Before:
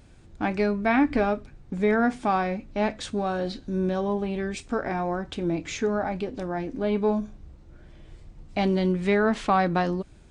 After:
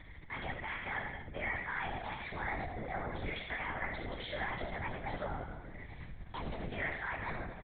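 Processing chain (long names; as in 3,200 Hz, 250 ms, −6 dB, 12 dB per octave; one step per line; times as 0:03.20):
low-pass filter 2,200 Hz 12 dB per octave
low shelf with overshoot 790 Hz −9 dB, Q 1.5
reversed playback
downward compressor 5 to 1, threshold −39 dBFS, peak gain reduction 18 dB
reversed playback
brickwall limiter −33.5 dBFS, peak gain reduction 5.5 dB
upward compression, threshold −51 dBFS
phaser with its sweep stopped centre 1,400 Hz, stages 8
repeating echo 115 ms, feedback 50%, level −8.5 dB
on a send at −4 dB: convolution reverb, pre-delay 46 ms
on the sum: wrong playback speed 33 rpm record played at 45 rpm
linear-prediction vocoder at 8 kHz whisper
level +6 dB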